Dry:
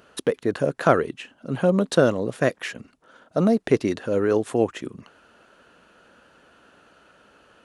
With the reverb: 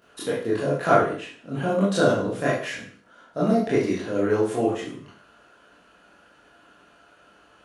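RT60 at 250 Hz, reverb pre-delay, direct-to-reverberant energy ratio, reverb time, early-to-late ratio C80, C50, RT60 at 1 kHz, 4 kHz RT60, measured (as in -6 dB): 0.50 s, 20 ms, -8.5 dB, 0.50 s, 8.0 dB, 1.5 dB, 0.45 s, 0.50 s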